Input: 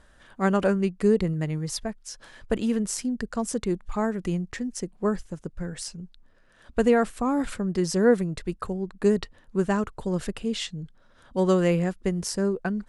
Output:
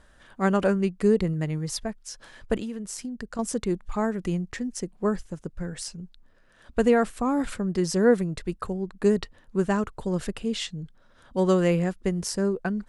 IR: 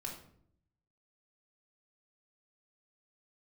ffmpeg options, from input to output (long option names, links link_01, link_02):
-filter_complex "[0:a]asettb=1/sr,asplit=3[link_01][link_02][link_03];[link_01]atrim=end=2.584[link_04];[link_02]atrim=start=2.58:end=3.39,asetpts=PTS-STARTPTS,afade=type=in:duration=0.004:curve=qsin,afade=type=out:start_time=0.806:duration=0.004:curve=qsin,acompressor=threshold=-32dB:ratio=5[link_05];[link_03]atrim=start=3.386[link_06];[link_04][link_05]acrossfade=duration=0.004:curve1=hsin:curve2=qsin[link_07];[link_07][link_06]acrossfade=duration=0.004:curve1=qsin:curve2=hsin"